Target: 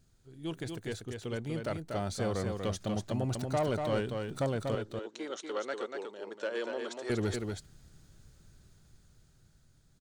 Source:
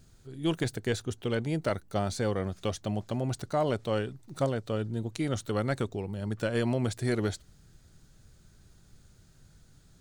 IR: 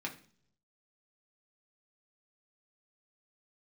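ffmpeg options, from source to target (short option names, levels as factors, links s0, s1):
-filter_complex "[0:a]dynaudnorm=f=560:g=7:m=2.66,asoftclip=type=tanh:threshold=0.188,asettb=1/sr,asplit=3[s0][s1][s2];[s0]atrim=end=4.754[s3];[s1]atrim=start=4.75:end=7.1,asetpts=PTS-STARTPTS,afade=t=in:d=0.004:c=qsin,afade=t=out:st=2.346:d=0.004:c=qsin,highpass=f=380:w=0.5412,highpass=f=380:w=1.3066,equalizer=f=730:t=q:w=4:g=-6,equalizer=f=2300:t=q:w=4:g=-5,equalizer=f=4700:t=q:w=4:g=-5,lowpass=f=6600:w=0.5412,lowpass=f=6600:w=1.3066[s4];[s2]atrim=start=7.096[s5];[s3][s4]acrossfade=d=0.004:c1=hsin:c2=qsin[s6];[s6][s5]acrossfade=d=0.004:c1=qsin:c2=hsin,aecho=1:1:240:0.562,volume=0.355"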